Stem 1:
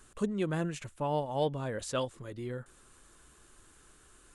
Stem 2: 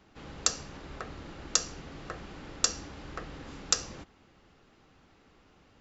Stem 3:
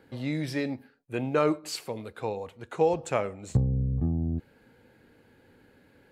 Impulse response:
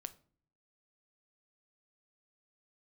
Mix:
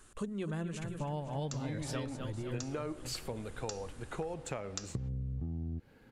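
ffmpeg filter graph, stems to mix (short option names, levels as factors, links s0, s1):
-filter_complex "[0:a]bandreject=f=60:t=h:w=6,bandreject=f=120:t=h:w=6,bandreject=f=180:t=h:w=6,bandreject=f=240:t=h:w=6,asubboost=boost=6:cutoff=230,volume=0.944,asplit=2[s0][s1];[s1]volume=0.316[s2];[1:a]adelay=1050,volume=0.266[s3];[2:a]lowshelf=f=130:g=7,acompressor=threshold=0.0447:ratio=3,adelay=1400,volume=0.708[s4];[s2]aecho=0:1:255|510|765|1020|1275|1530|1785|2040:1|0.56|0.314|0.176|0.0983|0.0551|0.0308|0.0173[s5];[s0][s3][s4][s5]amix=inputs=4:normalize=0,acompressor=threshold=0.0178:ratio=4"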